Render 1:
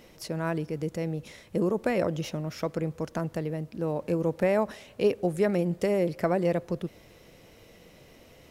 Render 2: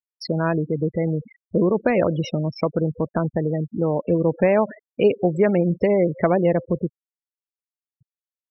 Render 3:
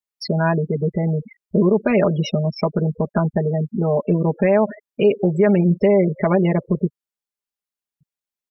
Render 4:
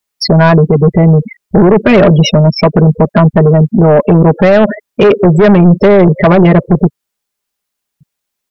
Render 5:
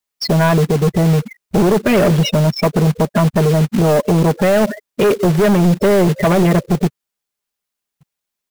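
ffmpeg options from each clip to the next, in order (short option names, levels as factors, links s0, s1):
-filter_complex "[0:a]afftfilt=real='re*gte(hypot(re,im),0.0251)':imag='im*gte(hypot(re,im),0.0251)':win_size=1024:overlap=0.75,asplit=2[s0][s1];[s1]acompressor=threshold=0.0251:ratio=6,volume=1.12[s2];[s0][s2]amix=inputs=2:normalize=0,volume=1.68"
-af "aecho=1:1:4.9:0.98,alimiter=level_in=2:limit=0.891:release=50:level=0:latency=1,volume=0.531"
-af "aeval=exprs='0.473*(cos(1*acos(clip(val(0)/0.473,-1,1)))-cos(1*PI/2))+0.0473*(cos(5*acos(clip(val(0)/0.473,-1,1)))-cos(5*PI/2))':c=same,apsyclip=5.01,volume=0.841"
-af "acrusher=bits=3:mode=log:mix=0:aa=0.000001,volume=0.447"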